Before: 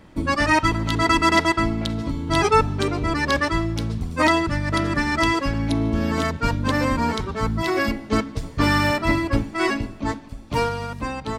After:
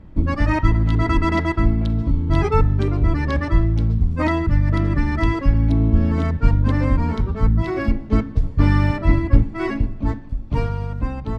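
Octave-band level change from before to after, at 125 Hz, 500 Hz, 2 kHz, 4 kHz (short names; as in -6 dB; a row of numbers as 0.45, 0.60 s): +8.0, -2.5, -6.5, -11.0 dB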